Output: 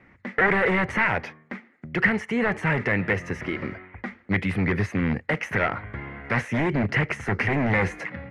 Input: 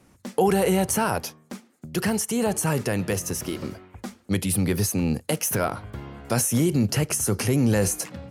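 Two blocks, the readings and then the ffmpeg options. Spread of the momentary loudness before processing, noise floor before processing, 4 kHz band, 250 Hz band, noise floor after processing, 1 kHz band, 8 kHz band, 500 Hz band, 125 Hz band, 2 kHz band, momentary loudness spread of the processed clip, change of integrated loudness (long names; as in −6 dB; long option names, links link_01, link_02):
16 LU, −59 dBFS, −6.0 dB, −2.0 dB, −56 dBFS, +1.0 dB, −24.0 dB, −2.5 dB, −2.0 dB, +10.5 dB, 15 LU, −0.5 dB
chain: -af "aeval=exprs='0.126*(abs(mod(val(0)/0.126+3,4)-2)-1)':channel_layout=same,lowpass=frequency=2000:width_type=q:width=6.2"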